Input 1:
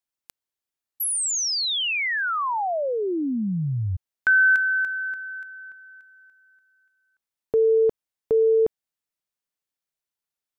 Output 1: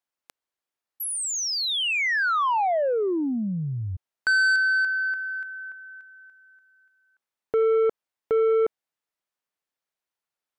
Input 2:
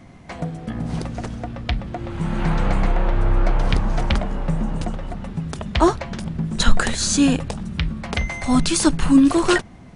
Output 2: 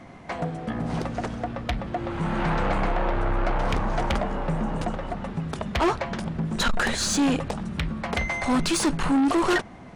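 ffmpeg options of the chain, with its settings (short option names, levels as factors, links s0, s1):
-filter_complex "[0:a]asplit=2[s0][s1];[s1]highpass=f=720:p=1,volume=4.47,asoftclip=type=tanh:threshold=0.891[s2];[s0][s2]amix=inputs=2:normalize=0,lowpass=f=1100:p=1,volume=0.501,highshelf=f=5900:g=7.5,asoftclip=type=tanh:threshold=0.126"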